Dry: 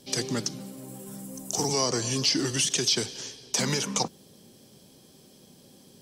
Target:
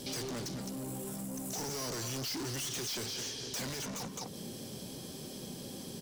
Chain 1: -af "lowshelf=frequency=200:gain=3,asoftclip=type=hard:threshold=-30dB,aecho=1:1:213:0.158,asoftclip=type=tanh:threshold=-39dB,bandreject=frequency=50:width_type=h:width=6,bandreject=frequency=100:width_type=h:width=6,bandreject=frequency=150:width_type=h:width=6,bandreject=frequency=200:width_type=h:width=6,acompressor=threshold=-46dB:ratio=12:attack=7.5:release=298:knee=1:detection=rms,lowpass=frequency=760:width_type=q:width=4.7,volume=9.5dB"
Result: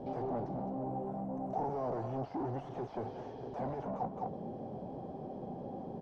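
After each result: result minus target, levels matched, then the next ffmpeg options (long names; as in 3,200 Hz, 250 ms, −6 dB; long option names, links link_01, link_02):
1,000 Hz band +10.5 dB; hard clipping: distortion +14 dB
-af "lowshelf=frequency=200:gain=3,asoftclip=type=hard:threshold=-30dB,aecho=1:1:213:0.158,asoftclip=type=tanh:threshold=-39dB,bandreject=frequency=50:width_type=h:width=6,bandreject=frequency=100:width_type=h:width=6,bandreject=frequency=150:width_type=h:width=6,bandreject=frequency=200:width_type=h:width=6,acompressor=threshold=-46dB:ratio=12:attack=7.5:release=298:knee=1:detection=rms,volume=9.5dB"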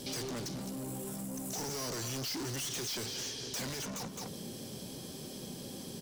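hard clipping: distortion +14 dB
-af "lowshelf=frequency=200:gain=3,asoftclip=type=hard:threshold=-18.5dB,aecho=1:1:213:0.158,asoftclip=type=tanh:threshold=-39dB,bandreject=frequency=50:width_type=h:width=6,bandreject=frequency=100:width_type=h:width=6,bandreject=frequency=150:width_type=h:width=6,bandreject=frequency=200:width_type=h:width=6,acompressor=threshold=-46dB:ratio=12:attack=7.5:release=298:knee=1:detection=rms,volume=9.5dB"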